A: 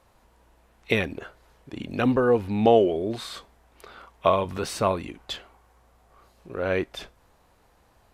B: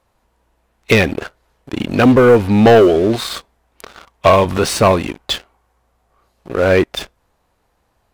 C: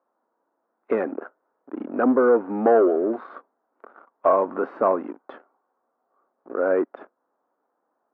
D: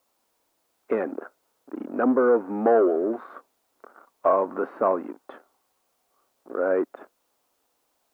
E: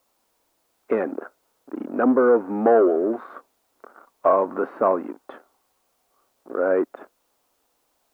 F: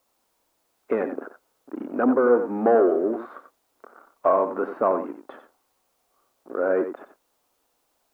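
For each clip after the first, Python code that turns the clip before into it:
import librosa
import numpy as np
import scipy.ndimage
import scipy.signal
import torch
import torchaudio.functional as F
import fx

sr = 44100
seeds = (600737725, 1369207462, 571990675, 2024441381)

y1 = fx.leveller(x, sr, passes=3)
y1 = y1 * 10.0 ** (3.0 / 20.0)
y2 = scipy.signal.sosfilt(scipy.signal.cheby1(3, 1.0, [260.0, 1400.0], 'bandpass', fs=sr, output='sos'), y1)
y2 = y2 * 10.0 ** (-7.5 / 20.0)
y3 = fx.quant_dither(y2, sr, seeds[0], bits=12, dither='triangular')
y3 = y3 * 10.0 ** (-2.0 / 20.0)
y4 = fx.low_shelf(y3, sr, hz=69.0, db=7.0)
y4 = y4 * 10.0 ** (2.5 / 20.0)
y5 = y4 + 10.0 ** (-9.5 / 20.0) * np.pad(y4, (int(90 * sr / 1000.0), 0))[:len(y4)]
y5 = y5 * 10.0 ** (-2.0 / 20.0)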